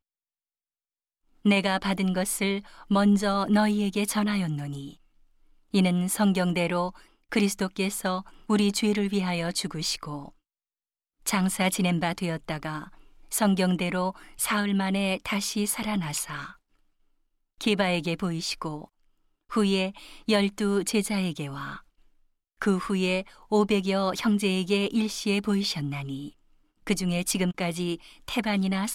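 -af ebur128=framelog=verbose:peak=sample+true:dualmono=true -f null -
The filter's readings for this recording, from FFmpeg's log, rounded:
Integrated loudness:
  I:         -23.6 LUFS
  Threshold: -34.0 LUFS
Loudness range:
  LRA:         3.7 LU
  Threshold: -44.5 LUFS
  LRA low:   -26.3 LUFS
  LRA high:  -22.6 LUFS
Sample peak:
  Peak:      -12.3 dBFS
True peak:
  Peak:      -12.3 dBFS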